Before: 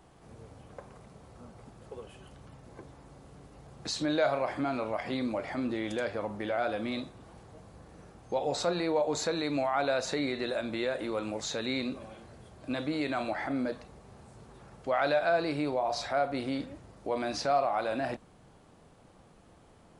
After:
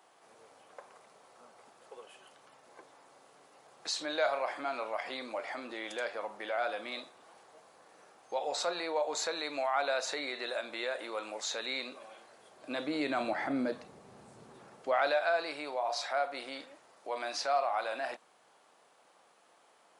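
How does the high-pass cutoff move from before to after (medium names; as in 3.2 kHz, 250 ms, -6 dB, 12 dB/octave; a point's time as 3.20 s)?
12.34 s 630 Hz
13.27 s 180 Hz
14.52 s 180 Hz
15.25 s 700 Hz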